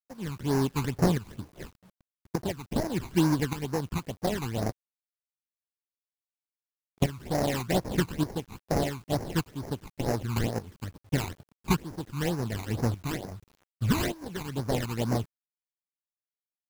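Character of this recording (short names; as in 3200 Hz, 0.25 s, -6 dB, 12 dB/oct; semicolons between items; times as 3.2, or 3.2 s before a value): aliases and images of a low sample rate 1300 Hz, jitter 20%; tremolo saw up 0.85 Hz, depth 75%; phasing stages 12, 2.2 Hz, lowest notch 540–3300 Hz; a quantiser's noise floor 10-bit, dither none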